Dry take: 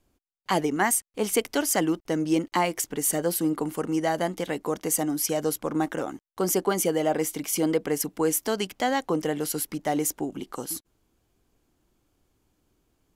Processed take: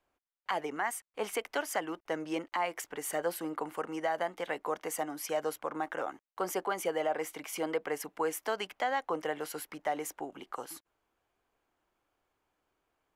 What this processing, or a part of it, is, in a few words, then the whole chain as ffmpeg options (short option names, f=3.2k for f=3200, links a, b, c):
DJ mixer with the lows and highs turned down: -filter_complex "[0:a]acrossover=split=530 2700:gain=0.126 1 0.2[a][b][c];[a][b][c]amix=inputs=3:normalize=0,alimiter=limit=-21dB:level=0:latency=1:release=199"